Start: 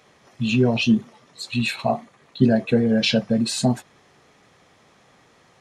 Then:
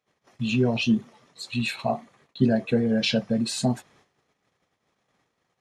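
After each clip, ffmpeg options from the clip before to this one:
-af "agate=range=0.0794:threshold=0.00224:ratio=16:detection=peak,volume=0.631"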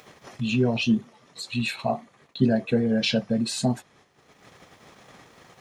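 -af "acompressor=mode=upward:threshold=0.0251:ratio=2.5"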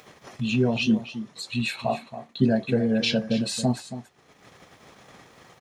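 -af "aecho=1:1:276:0.237"

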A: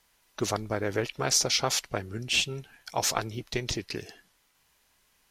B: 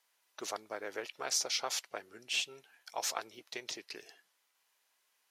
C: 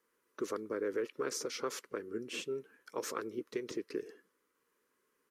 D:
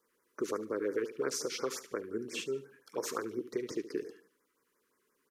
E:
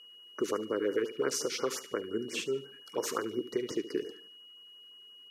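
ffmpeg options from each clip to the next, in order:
-af "highpass=500,volume=0.398"
-filter_complex "[0:a]firequalizer=gain_entry='entry(150,0);entry(230,5);entry(470,4);entry(710,-25);entry(1100,-7);entry(2500,-19);entry(3700,-23);entry(8600,-17)':delay=0.05:min_phase=1,acrossover=split=1500[s0][s1];[s0]alimiter=level_in=5.01:limit=0.0631:level=0:latency=1:release=149,volume=0.2[s2];[s2][s1]amix=inputs=2:normalize=0,volume=3.76"
-af "aecho=1:1:73|146|219:0.2|0.0718|0.0259,afftfilt=real='re*(1-between(b*sr/1024,600*pow(3500/600,0.5+0.5*sin(2*PI*5.7*pts/sr))/1.41,600*pow(3500/600,0.5+0.5*sin(2*PI*5.7*pts/sr))*1.41))':imag='im*(1-between(b*sr/1024,600*pow(3500/600,0.5+0.5*sin(2*PI*5.7*pts/sr))/1.41,600*pow(3500/600,0.5+0.5*sin(2*PI*5.7*pts/sr))*1.41))':win_size=1024:overlap=0.75,volume=1.33"
-af "aeval=exprs='val(0)+0.002*sin(2*PI*2900*n/s)':c=same,volume=1.41"

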